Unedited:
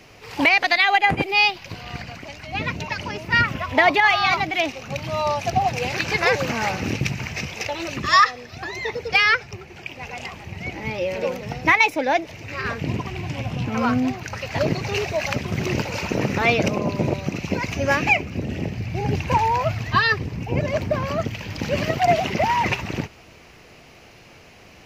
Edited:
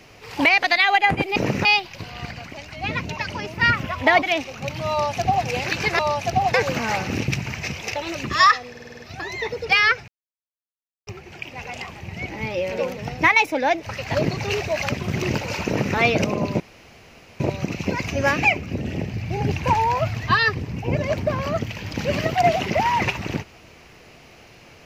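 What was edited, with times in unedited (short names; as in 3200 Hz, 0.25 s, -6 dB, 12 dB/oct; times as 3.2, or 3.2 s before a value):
3.93–4.5 cut
5.19–5.74 copy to 6.27
8.43 stutter 0.05 s, 7 plays
9.51 insert silence 0.99 s
12.3–14.3 cut
16.11–16.4 copy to 1.36
17.04 insert room tone 0.80 s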